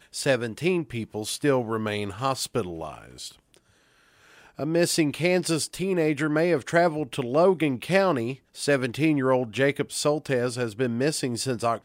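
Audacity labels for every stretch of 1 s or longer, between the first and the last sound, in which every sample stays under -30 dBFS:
3.280000	4.590000	silence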